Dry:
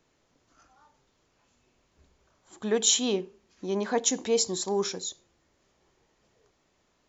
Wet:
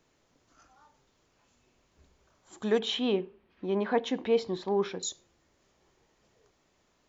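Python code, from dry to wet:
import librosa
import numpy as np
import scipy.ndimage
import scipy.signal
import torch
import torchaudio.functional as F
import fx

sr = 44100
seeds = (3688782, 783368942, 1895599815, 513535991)

y = fx.lowpass(x, sr, hz=3200.0, slope=24, at=(2.79, 5.03))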